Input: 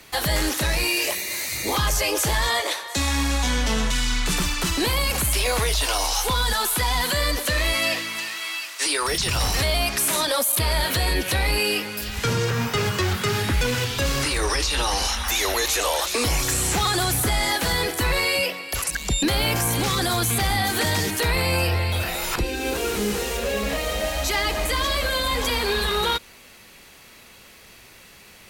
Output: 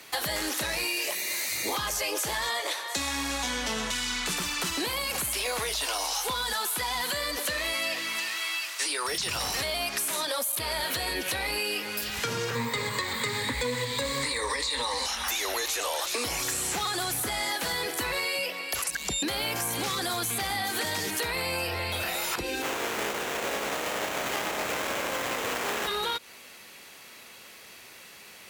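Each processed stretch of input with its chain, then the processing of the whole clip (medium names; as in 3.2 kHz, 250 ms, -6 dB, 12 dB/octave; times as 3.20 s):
12.55–15.06 s: rippled EQ curve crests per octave 1, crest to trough 14 dB + loudspeaker Doppler distortion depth 0.11 ms
22.61–25.86 s: spectral contrast reduction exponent 0.27 + peaking EQ 470 Hz +6 dB 1.9 oct + sliding maximum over 9 samples
whole clip: high-pass 330 Hz 6 dB/octave; compression, threshold -27 dBFS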